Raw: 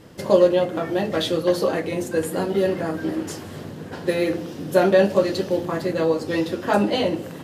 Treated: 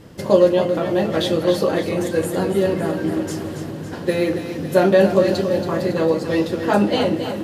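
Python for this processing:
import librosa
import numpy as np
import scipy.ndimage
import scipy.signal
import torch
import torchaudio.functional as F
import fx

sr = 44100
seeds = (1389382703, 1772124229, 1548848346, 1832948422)

y = fx.low_shelf(x, sr, hz=210.0, db=5.0)
y = fx.echo_feedback(y, sr, ms=278, feedback_pct=58, wet_db=-9.0)
y = F.gain(torch.from_numpy(y), 1.0).numpy()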